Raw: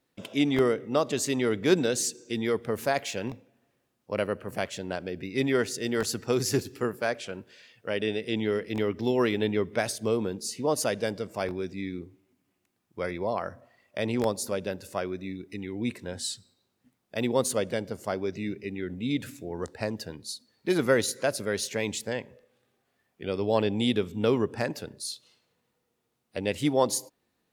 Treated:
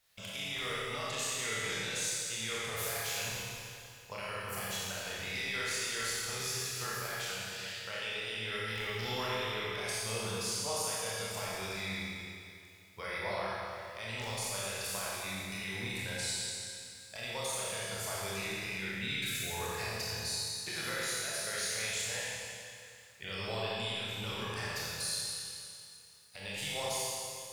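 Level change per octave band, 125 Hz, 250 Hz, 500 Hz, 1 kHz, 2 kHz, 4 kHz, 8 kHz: −7.5, −17.5, −13.5, −5.5, −1.0, +1.0, −0.5 decibels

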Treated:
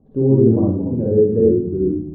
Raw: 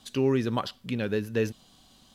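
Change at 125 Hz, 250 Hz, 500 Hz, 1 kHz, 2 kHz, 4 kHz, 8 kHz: +14.5 dB, +13.5 dB, +13.5 dB, can't be measured, below −20 dB, below −40 dB, below −30 dB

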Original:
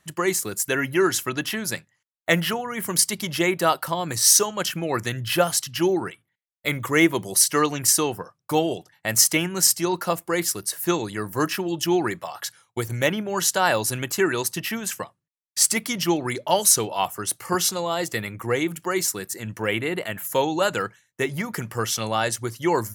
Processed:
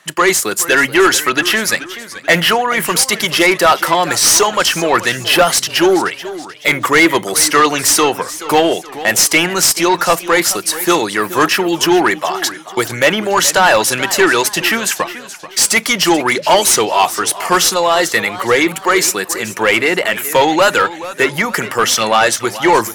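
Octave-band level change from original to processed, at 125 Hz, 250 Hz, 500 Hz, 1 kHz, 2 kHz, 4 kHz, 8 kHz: +2.5, +8.0, +10.5, +13.0, +14.0, +12.0, +7.5 decibels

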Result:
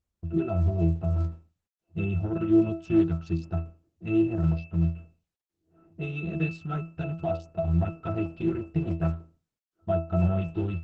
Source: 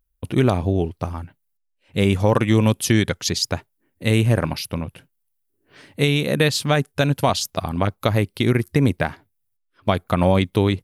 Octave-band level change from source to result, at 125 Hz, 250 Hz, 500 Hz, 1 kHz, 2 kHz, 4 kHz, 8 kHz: −6.5 dB, −5.0 dB, −9.5 dB, −13.0 dB, −16.0 dB, below −25 dB, below −35 dB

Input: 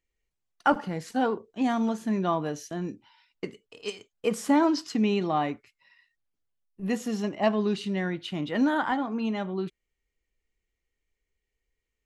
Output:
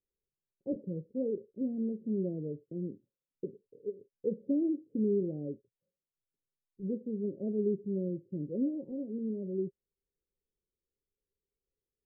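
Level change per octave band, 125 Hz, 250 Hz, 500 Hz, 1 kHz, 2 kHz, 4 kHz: −5.0 dB, −6.5 dB, −5.0 dB, below −40 dB, below −40 dB, below −40 dB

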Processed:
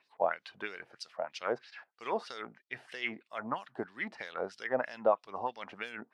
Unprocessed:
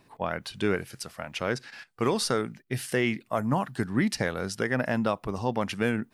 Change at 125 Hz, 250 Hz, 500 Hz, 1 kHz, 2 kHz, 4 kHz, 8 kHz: −24.5, −17.0, −5.0, −4.0, −7.0, −11.0, −20.5 decibels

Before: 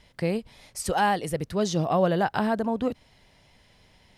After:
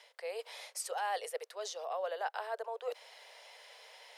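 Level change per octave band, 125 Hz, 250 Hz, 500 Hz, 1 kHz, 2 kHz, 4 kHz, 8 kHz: below −40 dB, below −40 dB, −12.0 dB, −11.5 dB, −11.0 dB, −8.0 dB, −7.0 dB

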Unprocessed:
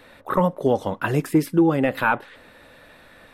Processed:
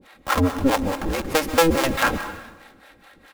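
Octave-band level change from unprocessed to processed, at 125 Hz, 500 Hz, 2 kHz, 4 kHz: −3.0, −0.5, +2.0, +12.5 decibels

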